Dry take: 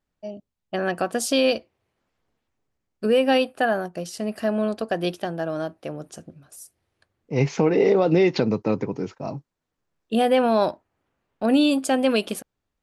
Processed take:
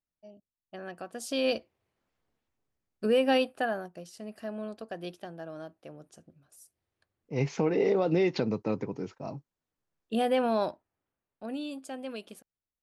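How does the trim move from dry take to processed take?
1.11 s -16.5 dB
1.55 s -5.5 dB
3.44 s -5.5 dB
4.07 s -14 dB
6.24 s -14 dB
7.48 s -7.5 dB
10.53 s -7.5 dB
11.60 s -18.5 dB

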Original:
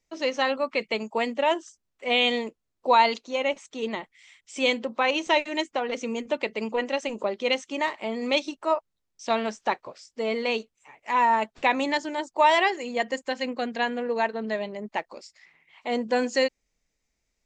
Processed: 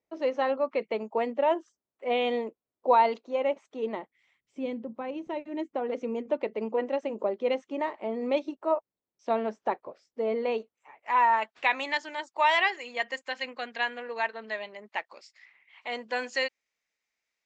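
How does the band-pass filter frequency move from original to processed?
band-pass filter, Q 0.73
3.96 s 520 Hz
4.66 s 130 Hz
5.35 s 130 Hz
5.96 s 440 Hz
10.36 s 440 Hz
11.58 s 2 kHz

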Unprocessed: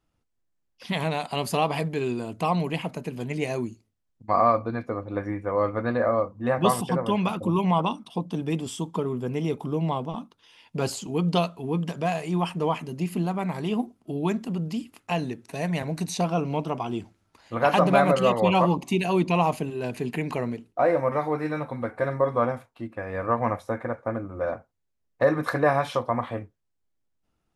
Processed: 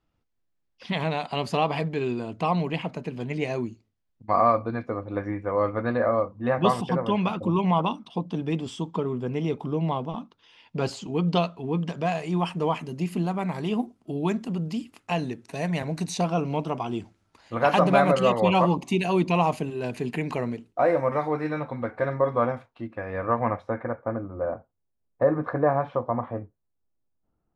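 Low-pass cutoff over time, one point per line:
11.68 s 5 kHz
12.74 s 9.3 kHz
21.03 s 9.3 kHz
21.66 s 4.6 kHz
22.96 s 4.6 kHz
23.77 s 2.3 kHz
24.43 s 1.1 kHz

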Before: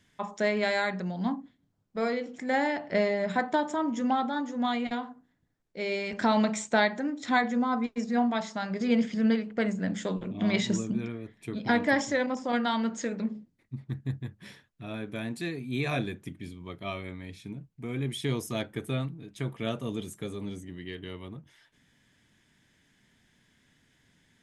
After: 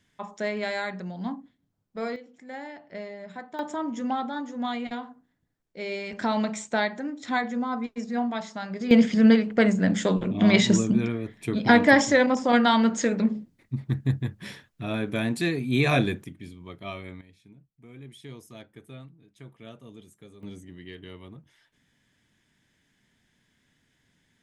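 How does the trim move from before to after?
-2.5 dB
from 2.16 s -12 dB
from 3.59 s -1.5 dB
from 8.91 s +8 dB
from 16.24 s -1 dB
from 17.21 s -13 dB
from 20.43 s -3 dB

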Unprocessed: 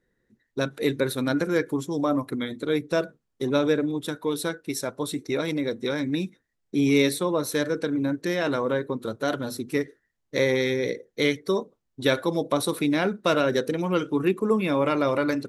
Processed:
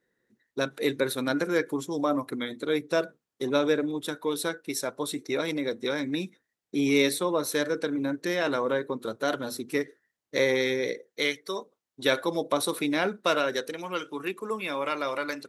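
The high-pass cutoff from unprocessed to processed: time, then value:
high-pass 6 dB/octave
10.75 s 320 Hz
11.47 s 1.3 kHz
12.14 s 400 Hz
13.09 s 400 Hz
13.75 s 1.2 kHz

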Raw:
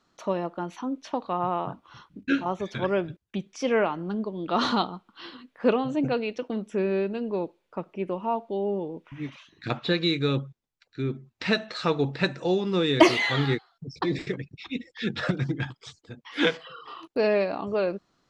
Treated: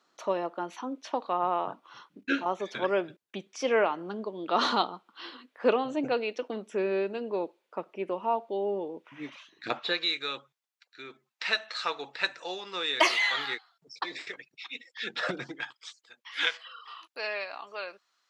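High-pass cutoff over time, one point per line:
9.68 s 360 Hz
10.08 s 950 Hz
14.93 s 950 Hz
15.35 s 360 Hz
15.77 s 1.3 kHz

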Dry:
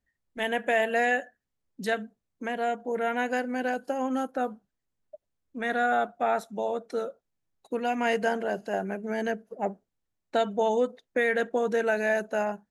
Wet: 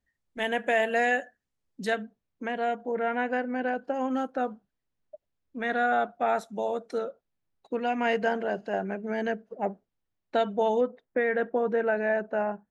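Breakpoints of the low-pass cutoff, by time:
9.4 kHz
from 1.96 s 4.5 kHz
from 2.91 s 2.5 kHz
from 3.94 s 4.8 kHz
from 6.28 s 9.6 kHz
from 6.98 s 4.2 kHz
from 10.81 s 1.8 kHz

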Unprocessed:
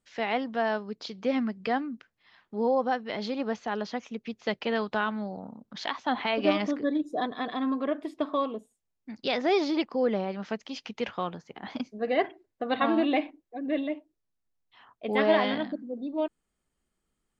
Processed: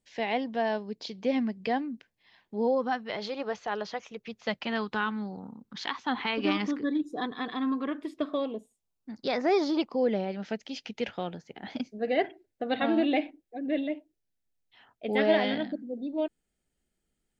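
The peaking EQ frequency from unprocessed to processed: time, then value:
peaking EQ -14 dB 0.37 oct
2.64 s 1.3 kHz
3.15 s 240 Hz
4.21 s 240 Hz
4.89 s 630 Hz
7.95 s 630 Hz
9.46 s 3.5 kHz
10.14 s 1.1 kHz

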